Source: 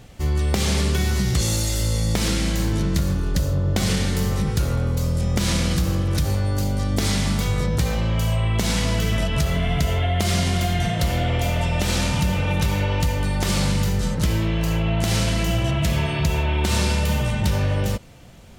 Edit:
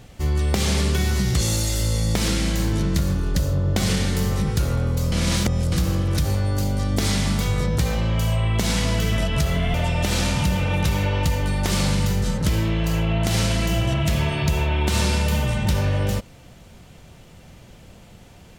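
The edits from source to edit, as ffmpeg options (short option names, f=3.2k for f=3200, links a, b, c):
-filter_complex "[0:a]asplit=4[a][b][c][d];[a]atrim=end=5.122[e];[b]atrim=start=5.118:end=5.722,asetpts=PTS-STARTPTS,areverse[f];[c]atrim=start=5.718:end=9.742[g];[d]atrim=start=11.508[h];[e][f]acrossfade=d=0.004:c1=hsin:c2=hsin[i];[i][g]acrossfade=d=0.004:c1=hsin:c2=hsin[j];[j][h]acrossfade=d=0.004:c1=hsin:c2=hsin"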